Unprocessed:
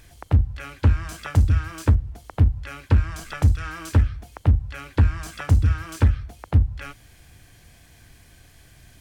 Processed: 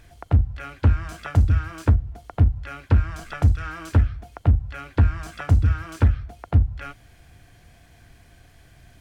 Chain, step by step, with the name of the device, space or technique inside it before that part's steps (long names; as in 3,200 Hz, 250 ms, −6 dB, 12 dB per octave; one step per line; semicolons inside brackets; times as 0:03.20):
inside a helmet (high-shelf EQ 4,000 Hz −8 dB; hollow resonant body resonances 700/1,400 Hz, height 6 dB)